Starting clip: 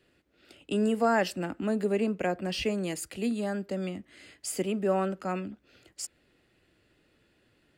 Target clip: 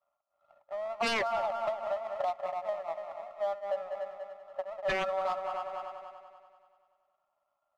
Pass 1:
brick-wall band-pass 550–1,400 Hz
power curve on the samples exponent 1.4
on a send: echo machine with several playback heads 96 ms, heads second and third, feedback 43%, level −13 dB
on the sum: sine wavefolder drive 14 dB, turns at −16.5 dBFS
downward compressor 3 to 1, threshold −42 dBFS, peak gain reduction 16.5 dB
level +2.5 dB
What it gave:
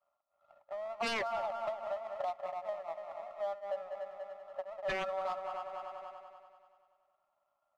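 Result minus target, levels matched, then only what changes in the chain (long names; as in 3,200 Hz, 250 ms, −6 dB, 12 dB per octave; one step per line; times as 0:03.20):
downward compressor: peak gain reduction +4.5 dB
change: downward compressor 3 to 1, threshold −35 dBFS, peak gain reduction 12 dB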